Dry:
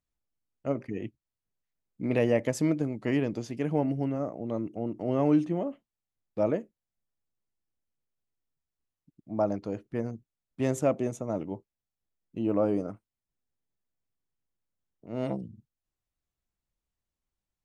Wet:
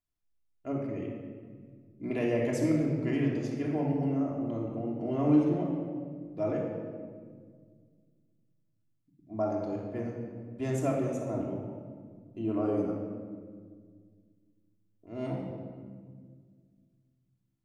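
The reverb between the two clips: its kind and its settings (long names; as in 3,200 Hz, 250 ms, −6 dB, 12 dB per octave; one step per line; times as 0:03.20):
rectangular room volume 2,500 cubic metres, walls mixed, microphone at 3.1 metres
level −7.5 dB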